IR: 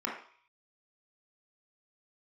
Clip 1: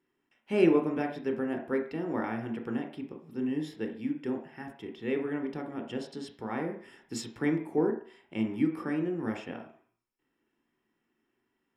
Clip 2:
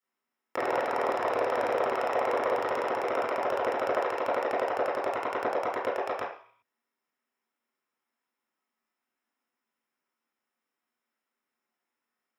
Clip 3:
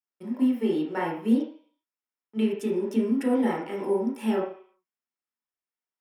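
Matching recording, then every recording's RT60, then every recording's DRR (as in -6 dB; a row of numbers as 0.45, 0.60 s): 3; 0.50, 0.50, 0.50 s; 3.5, -9.0, -3.0 dB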